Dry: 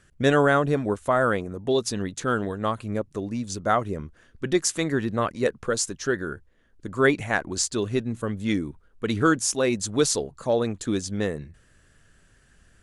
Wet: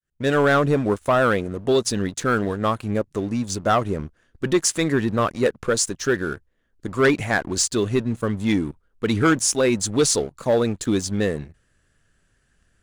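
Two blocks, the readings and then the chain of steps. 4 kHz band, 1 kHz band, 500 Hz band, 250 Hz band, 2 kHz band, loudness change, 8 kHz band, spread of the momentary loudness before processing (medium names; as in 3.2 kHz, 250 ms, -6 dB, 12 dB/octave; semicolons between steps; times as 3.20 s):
+4.0 dB, +2.5 dB, +3.5 dB, +4.0 dB, +2.5 dB, +3.5 dB, +4.5 dB, 10 LU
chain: fade-in on the opening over 0.52 s; waveshaping leveller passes 2; trim -2.5 dB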